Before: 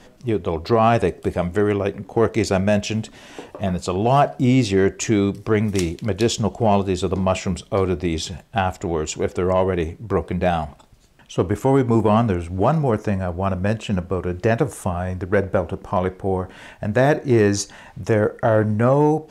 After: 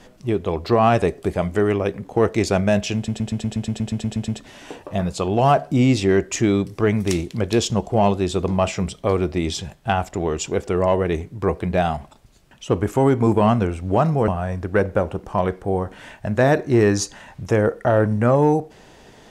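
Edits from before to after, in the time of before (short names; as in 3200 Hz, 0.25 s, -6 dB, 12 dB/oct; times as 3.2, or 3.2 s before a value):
2.96 stutter 0.12 s, 12 plays
12.96–14.86 cut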